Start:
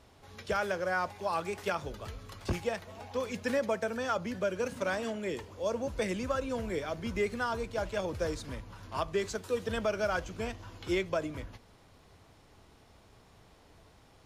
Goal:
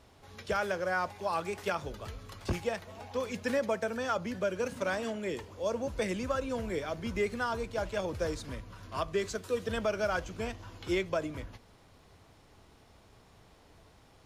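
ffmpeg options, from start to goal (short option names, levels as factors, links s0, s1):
-filter_complex "[0:a]asettb=1/sr,asplit=3[s0][s1][s2];[s0]atrim=end=8.534[s3];[s1]atrim=start=8.53:end=9.69,asetpts=PTS-STARTPTS,afade=t=in:d=0.004:c=qsin,afade=t=out:st=1.156:d=0.004:c=qsin,asuperstop=centerf=860:order=4:qfactor=7.1[s4];[s2]atrim=start=9.686[s5];[s3][s4]acrossfade=d=0.004:c1=hsin:c2=qsin[s6];[s6][s5]acrossfade=d=0.004:c1=qsin:c2=hsin"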